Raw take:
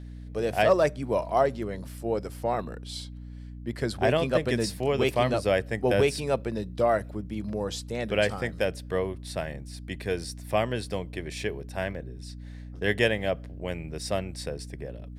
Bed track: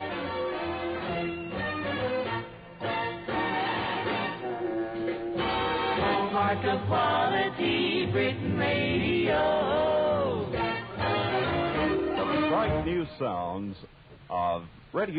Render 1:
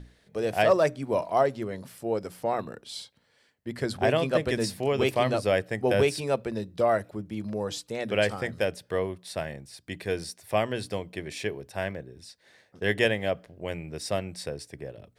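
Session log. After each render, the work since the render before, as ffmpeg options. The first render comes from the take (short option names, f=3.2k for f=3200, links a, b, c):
-af "bandreject=f=60:t=h:w=6,bandreject=f=120:t=h:w=6,bandreject=f=180:t=h:w=6,bandreject=f=240:t=h:w=6,bandreject=f=300:t=h:w=6"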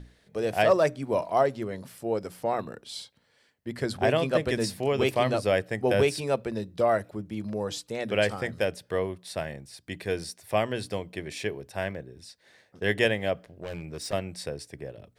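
-filter_complex "[0:a]asettb=1/sr,asplit=3[a][b][c];[a]atrim=end=13.484[d];[b]atrim=start=13.48:end=14.13,asetpts=PTS-STARTPTS,afade=t=in:d=0.004:c=qsin,afade=t=out:st=0.646:d=0.004:c=qsin,asoftclip=type=hard:threshold=-30.5dB[e];[c]atrim=start=14.126[f];[d][e]acrossfade=d=0.004:c1=hsin:c2=qsin[g];[g][f]acrossfade=d=0.004:c1=qsin:c2=hsin"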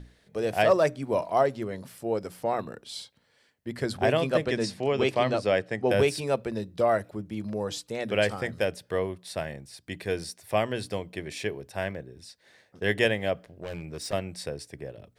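-filter_complex "[0:a]asettb=1/sr,asplit=3[a][b][c];[a]atrim=end=4.454[d];[b]atrim=start=4.45:end=5.91,asetpts=PTS-STARTPTS,afade=t=in:d=0.004:c=qsin,afade=t=out:st=1.456:d=0.004:c=qsin,highpass=110,lowpass=6.9k[e];[c]atrim=start=5.906[f];[d][e]acrossfade=d=0.004:c1=hsin:c2=qsin[g];[g][f]acrossfade=d=0.004:c1=qsin:c2=hsin"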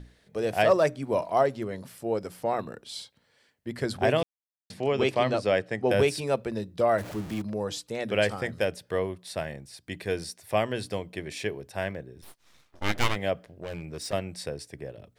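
-filter_complex "[0:a]asettb=1/sr,asplit=3[a][b][c];[a]atrim=end=6.984[d];[b]atrim=start=6.98:end=7.42,asetpts=PTS-STARTPTS,afade=t=in:d=0.004:c=qsin,afade=t=out:st=0.436:d=0.004:c=qsin,aeval=exprs='val(0)+0.5*0.0168*sgn(val(0))':c=same[e];[c]atrim=start=7.416[f];[d][e]acrossfade=d=0.004:c1=hsin:c2=qsin[g];[g][f]acrossfade=d=0.004:c1=qsin:c2=hsin,asplit=3[h][i][j];[h]afade=t=out:st=12.21:d=0.02[k];[i]aeval=exprs='abs(val(0))':c=same,afade=t=in:st=12.21:d=0.02,afade=t=out:st=13.15:d=0.02[l];[j]afade=t=in:st=13.15:d=0.02[m];[k][l][m]amix=inputs=3:normalize=0,asplit=3[n][o][p];[n]atrim=end=4.23,asetpts=PTS-STARTPTS,afade=t=out:st=4.226:d=0.004:c=hsin[q];[o]atrim=start=4.23:end=4.7,asetpts=PTS-STARTPTS,volume=0[r];[p]atrim=start=4.7,asetpts=PTS-STARTPTS,afade=t=in:d=0.004:c=hsin[s];[q][r][s]concat=n=3:v=0:a=1"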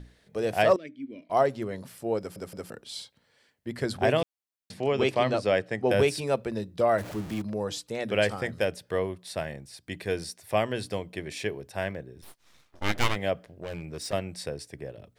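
-filter_complex "[0:a]asettb=1/sr,asplit=3[a][b][c];[a]atrim=end=0.764[d];[b]atrim=start=0.76:end=1.3,asetpts=PTS-STARTPTS,afade=t=in:d=0.004:c=qsin,afade=t=out:st=0.536:d=0.004:c=qsin,asplit=3[e][f][g];[e]bandpass=f=270:t=q:w=8,volume=0dB[h];[f]bandpass=f=2.29k:t=q:w=8,volume=-6dB[i];[g]bandpass=f=3.01k:t=q:w=8,volume=-9dB[j];[h][i][j]amix=inputs=3:normalize=0[k];[c]atrim=start=1.296[l];[d][k]acrossfade=d=0.004:c1=hsin:c2=qsin[m];[m][l]acrossfade=d=0.004:c1=qsin:c2=hsin,asplit=4[n][o][p][q];[n]atrim=end=2.362[r];[o]atrim=start=2.188:end=2.362[s];[p]atrim=start=2.188:end=2.362[t];[q]atrim=start=2.698[u];[r][s]acrossfade=d=0.004:c1=hsin:c2=hsin[v];[v][t]acrossfade=d=0.004:c1=hsin:c2=hsin[w];[w][u]acrossfade=d=0.004:c1=hsin:c2=hsin"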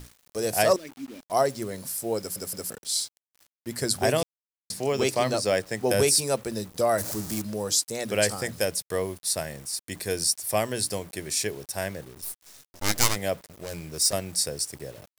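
-af "aexciter=amount=9.2:drive=1.4:freq=4.5k,acrusher=bits=7:mix=0:aa=0.000001"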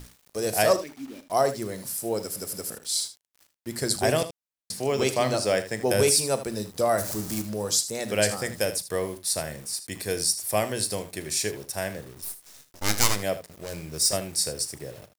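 -af "aecho=1:1:38|78:0.188|0.224"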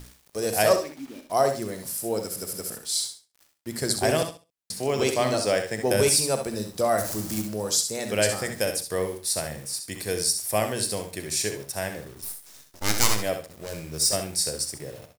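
-af "aecho=1:1:65|130|195:0.376|0.0789|0.0166"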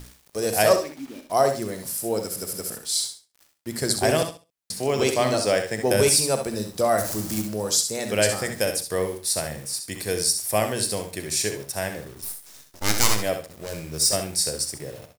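-af "volume=2dB,alimiter=limit=-2dB:level=0:latency=1"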